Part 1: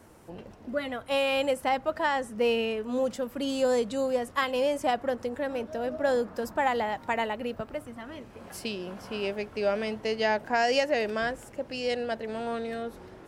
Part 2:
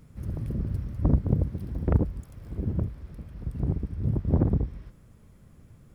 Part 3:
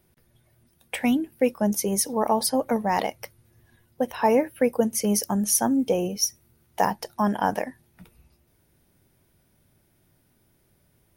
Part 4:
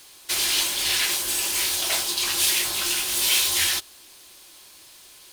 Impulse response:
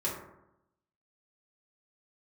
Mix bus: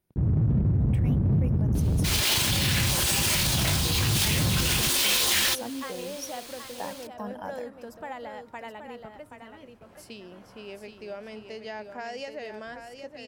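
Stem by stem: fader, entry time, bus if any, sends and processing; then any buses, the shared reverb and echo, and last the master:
-8.5 dB, 1.45 s, no send, echo send -7.5 dB, gate with hold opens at -38 dBFS; compressor 1.5:1, threshold -32 dBFS, peak gain reduction 4.5 dB
0.0 dB, 0.00 s, no send, no echo send, fuzz box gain 43 dB, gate -41 dBFS; band-pass 130 Hz, Q 1.2
-15.0 dB, 0.00 s, no send, no echo send, dry
-3.0 dB, 1.75 s, no send, no echo send, half-waves squared off; AGC gain up to 4 dB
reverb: off
echo: echo 0.776 s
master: limiter -17 dBFS, peak gain reduction 11 dB

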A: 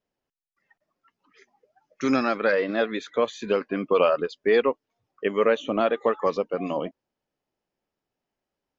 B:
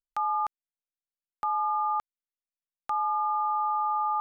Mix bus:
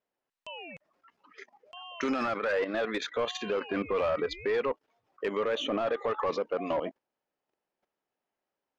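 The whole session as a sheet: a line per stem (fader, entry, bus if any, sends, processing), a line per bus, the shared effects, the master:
+2.5 dB, 0.00 s, no send, level quantiser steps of 14 dB; overdrive pedal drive 18 dB, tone 1700 Hz, clips at -14.5 dBFS
-3.0 dB, 0.30 s, no send, synth low-pass 6100 Hz; ring modulator with a swept carrier 1500 Hz, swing 30%, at 0.65 Hz; auto duck -12 dB, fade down 0.65 s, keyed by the first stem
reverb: off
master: limiter -22 dBFS, peak gain reduction 8.5 dB

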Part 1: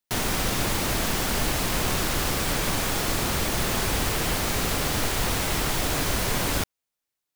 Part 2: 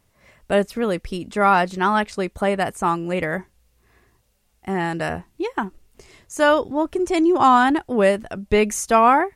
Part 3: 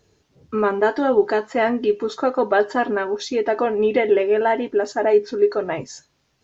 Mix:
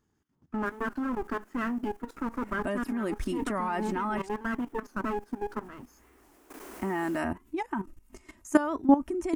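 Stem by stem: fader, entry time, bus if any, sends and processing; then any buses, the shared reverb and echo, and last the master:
-17.0 dB, 0.55 s, no send, resonant high-pass 390 Hz, resonance Q 3.5; auto duck -15 dB, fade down 1.05 s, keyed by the third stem
+2.5 dB, 2.15 s, muted 4.29–5.63, no send, compressor 2.5:1, threshold -23 dBFS, peak gain reduction 9 dB; comb 3.2 ms, depth 59%
-9.0 dB, 0.00 s, no send, minimum comb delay 0.61 ms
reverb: off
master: graphic EQ 125/250/500/1000/4000 Hz -4/+9/-8/+4/-10 dB; level quantiser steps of 15 dB; record warp 45 rpm, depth 160 cents

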